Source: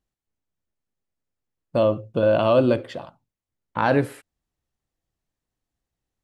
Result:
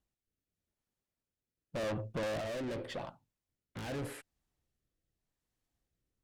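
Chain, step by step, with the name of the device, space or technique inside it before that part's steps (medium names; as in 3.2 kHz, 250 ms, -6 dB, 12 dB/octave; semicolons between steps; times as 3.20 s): overdriven rotary cabinet (valve stage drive 34 dB, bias 0.4; rotary cabinet horn 0.85 Hz); trim +1 dB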